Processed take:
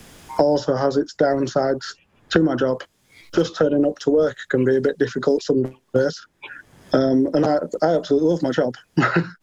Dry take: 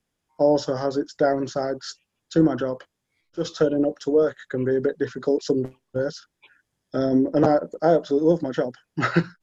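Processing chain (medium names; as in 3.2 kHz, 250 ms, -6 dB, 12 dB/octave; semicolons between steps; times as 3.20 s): loudness maximiser +11.5 dB; three bands compressed up and down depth 100%; trim -7.5 dB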